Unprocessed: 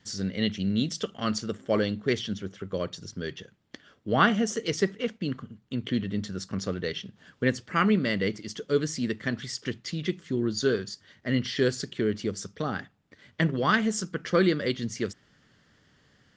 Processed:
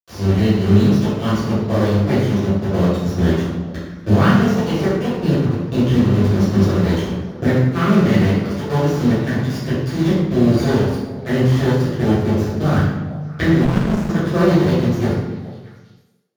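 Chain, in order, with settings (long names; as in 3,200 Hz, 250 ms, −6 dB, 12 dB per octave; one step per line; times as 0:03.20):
camcorder AGC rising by 15 dB per second
dynamic equaliser 160 Hz, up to +4 dB, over −41 dBFS, Q 2.8
half-wave rectification
bit reduction 5 bits
echo through a band-pass that steps 209 ms, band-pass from 230 Hz, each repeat 1.4 octaves, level −10.5 dB
convolution reverb RT60 1.2 s, pre-delay 3 ms, DRR −11.5 dB
0:13.65–0:14.10: windowed peak hold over 65 samples
level −14 dB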